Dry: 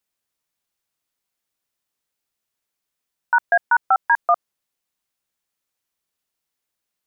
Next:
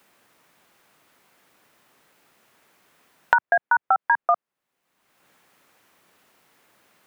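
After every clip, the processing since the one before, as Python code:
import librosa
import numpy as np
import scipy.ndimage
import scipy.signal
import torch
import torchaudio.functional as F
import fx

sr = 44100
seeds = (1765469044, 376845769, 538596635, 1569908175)

y = fx.band_squash(x, sr, depth_pct=100)
y = y * 10.0 ** (-2.0 / 20.0)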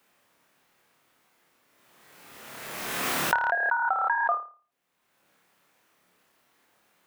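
y = fx.room_flutter(x, sr, wall_m=4.8, rt60_s=0.38)
y = fx.pre_swell(y, sr, db_per_s=28.0)
y = y * 10.0 ** (-7.5 / 20.0)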